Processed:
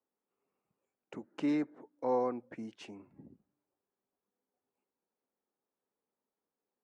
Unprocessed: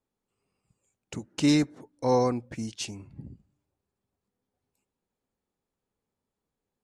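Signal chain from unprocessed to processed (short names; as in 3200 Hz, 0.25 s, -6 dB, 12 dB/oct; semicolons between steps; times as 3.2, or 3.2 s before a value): three-band isolator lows -22 dB, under 220 Hz, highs -22 dB, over 2200 Hz; in parallel at -2 dB: compressor, threshold -35 dBFS, peak gain reduction 14.5 dB; on the sum: gain -8 dB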